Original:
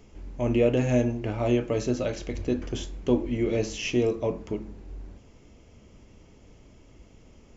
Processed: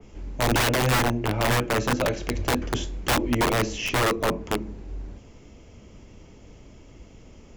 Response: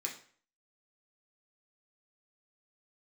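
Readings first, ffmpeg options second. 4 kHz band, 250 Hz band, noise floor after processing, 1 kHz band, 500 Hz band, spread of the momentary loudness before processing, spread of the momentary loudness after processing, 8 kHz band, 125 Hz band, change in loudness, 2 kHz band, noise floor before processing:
+10.5 dB, -1.0 dB, -49 dBFS, +14.0 dB, -1.0 dB, 13 LU, 16 LU, n/a, +3.0 dB, +2.5 dB, +12.0 dB, -54 dBFS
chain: -filter_complex "[0:a]acrossover=split=110[a][b];[b]aeval=exprs='(mod(11.2*val(0)+1,2)-1)/11.2':c=same[c];[a][c]amix=inputs=2:normalize=0,adynamicequalizer=threshold=0.00794:dfrequency=2900:dqfactor=0.7:tfrequency=2900:tqfactor=0.7:attack=5:release=100:ratio=0.375:range=3:mode=cutabove:tftype=highshelf,volume=5dB"

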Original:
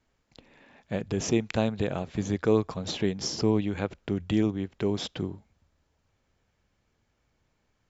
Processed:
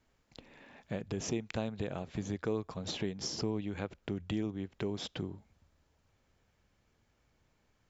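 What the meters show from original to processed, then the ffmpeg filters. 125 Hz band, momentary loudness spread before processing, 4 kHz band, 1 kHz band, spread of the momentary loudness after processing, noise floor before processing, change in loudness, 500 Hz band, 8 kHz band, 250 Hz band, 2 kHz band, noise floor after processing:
-8.5 dB, 9 LU, -6.0 dB, -8.5 dB, 16 LU, -74 dBFS, -9.0 dB, -10.0 dB, n/a, -9.5 dB, -7.5 dB, -74 dBFS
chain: -af "acompressor=threshold=-39dB:ratio=2"

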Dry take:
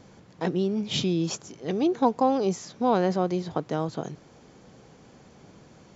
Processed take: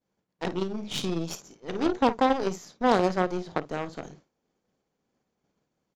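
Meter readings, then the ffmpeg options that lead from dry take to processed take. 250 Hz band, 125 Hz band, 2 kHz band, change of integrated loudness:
-3.0 dB, -5.0 dB, +5.5 dB, -1.5 dB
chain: -filter_complex "[0:a]acontrast=37,equalizer=f=110:t=o:w=0.73:g=-8,asplit=2[a][b];[b]aecho=0:1:28|53:0.133|0.335[c];[a][c]amix=inputs=2:normalize=0,aeval=exprs='0.596*(cos(1*acos(clip(val(0)/0.596,-1,1)))-cos(1*PI/2))+0.119*(cos(3*acos(clip(val(0)/0.596,-1,1)))-cos(3*PI/2))+0.075*(cos(6*acos(clip(val(0)/0.596,-1,1)))-cos(6*PI/2))+0.00473*(cos(7*acos(clip(val(0)/0.596,-1,1)))-cos(7*PI/2))+0.075*(cos(8*acos(clip(val(0)/0.596,-1,1)))-cos(8*PI/2))':c=same,agate=range=-33dB:threshold=-43dB:ratio=3:detection=peak,volume=-2.5dB"

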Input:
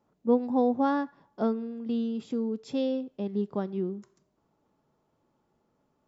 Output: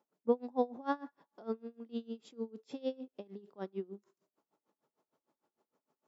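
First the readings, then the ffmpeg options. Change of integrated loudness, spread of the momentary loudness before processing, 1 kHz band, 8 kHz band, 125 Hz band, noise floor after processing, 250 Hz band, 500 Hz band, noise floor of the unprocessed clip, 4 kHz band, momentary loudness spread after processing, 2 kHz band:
-10.0 dB, 8 LU, -8.5 dB, n/a, under -10 dB, under -85 dBFS, -13.0 dB, -7.5 dB, -75 dBFS, -9.0 dB, 14 LU, -8.0 dB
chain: -af "highpass=290,aeval=exprs='val(0)*pow(10,-26*(0.5-0.5*cos(2*PI*6.6*n/s))/20)':c=same,volume=-1.5dB"

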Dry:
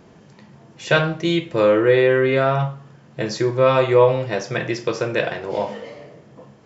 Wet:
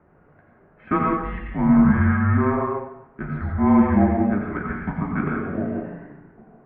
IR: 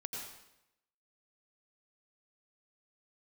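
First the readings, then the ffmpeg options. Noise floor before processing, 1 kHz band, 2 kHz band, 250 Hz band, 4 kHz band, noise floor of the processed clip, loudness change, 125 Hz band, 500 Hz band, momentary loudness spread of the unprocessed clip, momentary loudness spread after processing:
-49 dBFS, -1.0 dB, -6.5 dB, +6.0 dB, under -25 dB, -56 dBFS, -2.0 dB, +1.5 dB, -12.0 dB, 13 LU, 15 LU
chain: -filter_complex "[0:a]bandreject=f=50:t=h:w=6,bandreject=f=100:t=h:w=6,bandreject=f=150:t=h:w=6,bandreject=f=200:t=h:w=6,bandreject=f=250:t=h:w=6,bandreject=f=300:t=h:w=6,bandreject=f=350:t=h:w=6,bandreject=f=400:t=h:w=6[a];[1:a]atrim=start_sample=2205[b];[a][b]afir=irnorm=-1:irlink=0,highpass=f=390:t=q:w=0.5412,highpass=f=390:t=q:w=1.307,lowpass=f=2.1k:t=q:w=0.5176,lowpass=f=2.1k:t=q:w=0.7071,lowpass=f=2.1k:t=q:w=1.932,afreqshift=-290"

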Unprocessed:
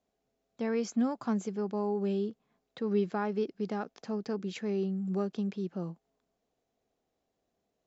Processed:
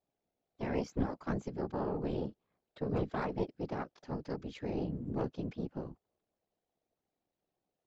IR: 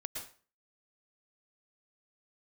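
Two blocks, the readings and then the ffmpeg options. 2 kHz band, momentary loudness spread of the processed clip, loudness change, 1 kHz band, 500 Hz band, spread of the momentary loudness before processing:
-2.5 dB, 7 LU, -4.5 dB, -2.5 dB, -5.0 dB, 7 LU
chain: -af "lowpass=5.3k,aeval=exprs='0.126*(cos(1*acos(clip(val(0)/0.126,-1,1)))-cos(1*PI/2))+0.0501*(cos(2*acos(clip(val(0)/0.126,-1,1)))-cos(2*PI/2))+0.0178*(cos(6*acos(clip(val(0)/0.126,-1,1)))-cos(6*PI/2))+0.01*(cos(8*acos(clip(val(0)/0.126,-1,1)))-cos(8*PI/2))':c=same,aeval=exprs='val(0)*sin(2*PI*32*n/s)':c=same,afftfilt=real='hypot(re,im)*cos(2*PI*random(0))':imag='hypot(re,im)*sin(2*PI*random(1))':win_size=512:overlap=0.75,volume=2.5dB"

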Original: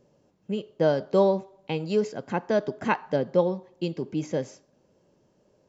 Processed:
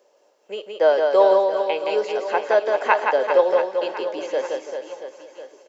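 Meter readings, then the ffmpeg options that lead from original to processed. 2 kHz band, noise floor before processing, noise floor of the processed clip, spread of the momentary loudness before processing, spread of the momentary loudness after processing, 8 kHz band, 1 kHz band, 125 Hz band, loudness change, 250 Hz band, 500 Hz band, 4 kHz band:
+9.5 dB, -66 dBFS, -60 dBFS, 11 LU, 18 LU, n/a, +9.5 dB, under -20 dB, +7.0 dB, -6.5 dB, +7.5 dB, +7.0 dB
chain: -filter_complex "[0:a]highpass=f=480:w=0.5412,highpass=f=480:w=1.3066,asplit=2[a][b];[b]aecho=0:1:458|916|1374|1832|2290:0.106|0.0604|0.0344|0.0196|0.0112[c];[a][c]amix=inputs=2:normalize=0,acrossover=split=3600[d][e];[e]acompressor=threshold=-55dB:ratio=4:attack=1:release=60[f];[d][f]amix=inputs=2:normalize=0,asplit=2[g][h];[h]aecho=0:1:170|391|678.3|1052|1537:0.631|0.398|0.251|0.158|0.1[i];[g][i]amix=inputs=2:normalize=0,volume=7.5dB"

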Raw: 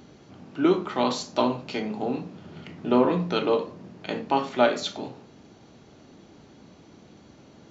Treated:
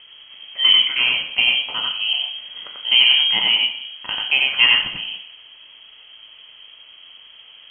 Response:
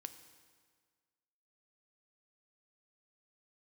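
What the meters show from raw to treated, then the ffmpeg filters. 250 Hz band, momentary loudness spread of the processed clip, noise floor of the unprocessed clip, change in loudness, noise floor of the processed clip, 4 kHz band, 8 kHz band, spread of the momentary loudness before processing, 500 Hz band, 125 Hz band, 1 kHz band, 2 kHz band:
-19.5 dB, 17 LU, -53 dBFS, +10.0 dB, -46 dBFS, +23.5 dB, n/a, 18 LU, -19.0 dB, under -10 dB, -6.5 dB, +17.5 dB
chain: -filter_complex "[0:a]asplit=2[a][b];[1:a]atrim=start_sample=2205,afade=t=out:st=0.28:d=0.01,atrim=end_sample=12789,adelay=91[c];[b][c]afir=irnorm=-1:irlink=0,volume=3.5dB[d];[a][d]amix=inputs=2:normalize=0,lowpass=f=2.9k:t=q:w=0.5098,lowpass=f=2.9k:t=q:w=0.6013,lowpass=f=2.9k:t=q:w=0.9,lowpass=f=2.9k:t=q:w=2.563,afreqshift=-3400,volume=4.5dB"

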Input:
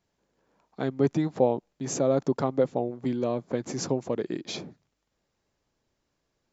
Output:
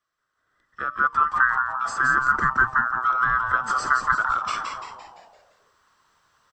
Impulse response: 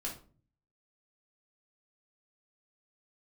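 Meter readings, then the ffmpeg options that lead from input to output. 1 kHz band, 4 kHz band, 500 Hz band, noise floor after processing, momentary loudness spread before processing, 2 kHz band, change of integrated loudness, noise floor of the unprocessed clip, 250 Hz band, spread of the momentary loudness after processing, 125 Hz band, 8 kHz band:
+16.0 dB, +1.5 dB, -17.0 dB, -77 dBFS, 9 LU, +26.0 dB, +6.5 dB, -79 dBFS, -14.0 dB, 11 LU, -7.5 dB, n/a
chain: -filter_complex "[0:a]afftfilt=real='real(if(lt(b,960),b+48*(1-2*mod(floor(b/48),2)),b),0)':imag='imag(if(lt(b,960),b+48*(1-2*mod(floor(b/48),2)),b),0)':win_size=2048:overlap=0.75,acrossover=split=160|1700[a][b][c];[c]acompressor=threshold=-43dB:ratio=10[d];[a][b][d]amix=inputs=3:normalize=0,bandreject=f=301:t=h:w=4,bandreject=f=602:t=h:w=4,bandreject=f=903:t=h:w=4,bandreject=f=1.204k:t=h:w=4,bandreject=f=1.505k:t=h:w=4,bandreject=f=1.806k:t=h:w=4,bandreject=f=2.107k:t=h:w=4,bandreject=f=2.408k:t=h:w=4,bandreject=f=2.709k:t=h:w=4,bandreject=f=3.01k:t=h:w=4,bandreject=f=3.311k:t=h:w=4,bandreject=f=3.612k:t=h:w=4,bandreject=f=3.913k:t=h:w=4,bandreject=f=4.214k:t=h:w=4,bandreject=f=4.515k:t=h:w=4,bandreject=f=4.816k:t=h:w=4,bandreject=f=5.117k:t=h:w=4,bandreject=f=5.418k:t=h:w=4,bandreject=f=5.719k:t=h:w=4,bandreject=f=6.02k:t=h:w=4,bandreject=f=6.321k:t=h:w=4,bandreject=f=6.622k:t=h:w=4,bandreject=f=6.923k:t=h:w=4,bandreject=f=7.224k:t=h:w=4,bandreject=f=7.525k:t=h:w=4,bandreject=f=7.826k:t=h:w=4,bandreject=f=8.127k:t=h:w=4,bandreject=f=8.428k:t=h:w=4,asplit=7[e][f][g][h][i][j][k];[f]adelay=171,afreqshift=-130,volume=-5dB[l];[g]adelay=342,afreqshift=-260,volume=-11.7dB[m];[h]adelay=513,afreqshift=-390,volume=-18.5dB[n];[i]adelay=684,afreqshift=-520,volume=-25.2dB[o];[j]adelay=855,afreqshift=-650,volume=-32dB[p];[k]adelay=1026,afreqshift=-780,volume=-38.7dB[q];[e][l][m][n][o][p][q]amix=inputs=7:normalize=0,dynaudnorm=f=350:g=5:m=16.5dB,volume=-4.5dB"

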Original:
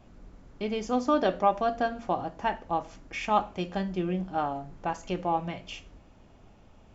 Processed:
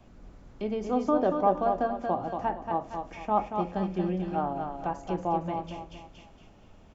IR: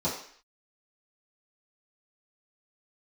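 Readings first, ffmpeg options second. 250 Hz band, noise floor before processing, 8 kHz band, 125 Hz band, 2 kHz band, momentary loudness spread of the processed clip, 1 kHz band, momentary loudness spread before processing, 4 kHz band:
+1.0 dB, -56 dBFS, n/a, +1.0 dB, -7.0 dB, 12 LU, 0.0 dB, 11 LU, -9.5 dB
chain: -filter_complex "[0:a]aecho=1:1:231|462|693|924:0.501|0.185|0.0686|0.0254,acrossover=split=160|720|1200[a][b][c][d];[d]acompressor=threshold=-51dB:ratio=6[e];[a][b][c][e]amix=inputs=4:normalize=0"

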